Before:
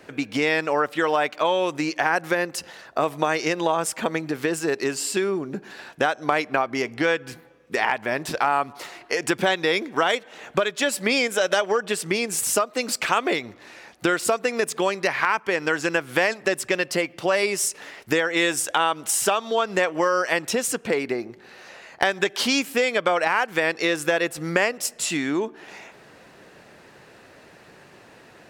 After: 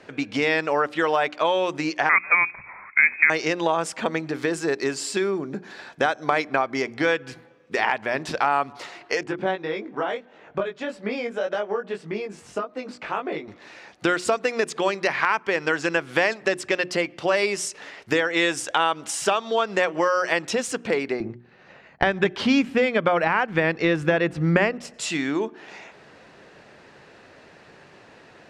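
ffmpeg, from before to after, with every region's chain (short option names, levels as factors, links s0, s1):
-filter_complex "[0:a]asettb=1/sr,asplit=3[s0][s1][s2];[s0]atrim=end=2.094[s3];[s1]atrim=start=2.09:end=3.3,asetpts=PTS-STARTPTS,afade=t=in:d=0.004:c=qsin,afade=t=out:st=1.206:d=0.004:c=qsin,highpass=f=240:w=0.5412,highpass=f=240:w=1.3066,equalizer=f=660:t=o:w=1.7:g=6,lowpass=f=2400:t=q:w=0.5098,lowpass=f=2400:t=q:w=0.6013,lowpass=f=2400:t=q:w=0.9,lowpass=f=2400:t=q:w=2.563,afreqshift=-2800[s4];[s2]atrim=start=3.296[s5];[s3][s4]acrossfade=d=0.004:c1=hsin:c2=qsin[s6];[s6][s5]acrossfade=d=0.004:c1=qsin:c2=hsin,asettb=1/sr,asplit=3[s7][s8][s9];[s7]atrim=end=4.344[s10];[s8]atrim=start=4.34:end=7.12,asetpts=PTS-STARTPTS,afade=t=in:d=0.004:c=qsin,afade=t=out:st=2.776:d=0.004:c=qsin,highshelf=f=11000:g=6,bandreject=f=2800:w=11[s11];[s9]atrim=start=7.116[s12];[s10][s11]acrossfade=d=0.004:c1=hsin:c2=qsin[s13];[s13][s12]acrossfade=d=0.004:c1=qsin:c2=hsin,asettb=1/sr,asplit=3[s14][s15][s16];[s14]atrim=end=9.234[s17];[s15]atrim=start=9.23:end=13.48,asetpts=PTS-STARTPTS,afade=t=in:d=0.004:c=qsin,afade=t=out:st=4.246:d=0.004:c=qsin,lowpass=f=1000:p=1,flanger=delay=19:depth=2.3:speed=1.7[s18];[s16]atrim=start=13.476[s19];[s17][s18]acrossfade=d=0.004:c1=hsin:c2=qsin[s20];[s20][s19]acrossfade=d=0.004:c1=qsin:c2=hsin,asettb=1/sr,asplit=3[s21][s22][s23];[s21]atrim=end=21.204[s24];[s22]atrim=start=21.2:end=24.94,asetpts=PTS-STARTPTS,afade=t=in:d=0.004:c=qsin,afade=t=out:st=3.736:d=0.004:c=qsin,agate=range=0.0224:threshold=0.01:ratio=3:release=100:detection=peak,bass=f=250:g=14,treble=f=4000:g=-12[s25];[s23]atrim=start=24.936[s26];[s24][s25]acrossfade=d=0.004:c1=hsin:c2=qsin[s27];[s27][s26]acrossfade=d=0.004:c1=qsin:c2=hsin,lowpass=6300,bandreject=f=60:t=h:w=6,bandreject=f=120:t=h:w=6,bandreject=f=180:t=h:w=6,bandreject=f=240:t=h:w=6,bandreject=f=300:t=h:w=6,bandreject=f=360:t=h:w=6"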